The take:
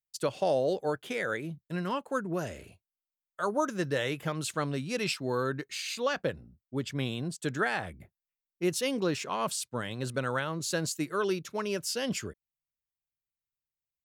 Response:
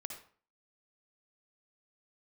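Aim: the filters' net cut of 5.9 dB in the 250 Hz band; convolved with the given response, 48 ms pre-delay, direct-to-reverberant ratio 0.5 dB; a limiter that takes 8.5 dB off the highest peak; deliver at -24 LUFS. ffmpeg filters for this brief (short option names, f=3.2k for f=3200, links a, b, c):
-filter_complex "[0:a]equalizer=f=250:t=o:g=-9,alimiter=level_in=2dB:limit=-24dB:level=0:latency=1,volume=-2dB,asplit=2[a][b];[1:a]atrim=start_sample=2205,adelay=48[c];[b][c]afir=irnorm=-1:irlink=0,volume=1.5dB[d];[a][d]amix=inputs=2:normalize=0,volume=10.5dB"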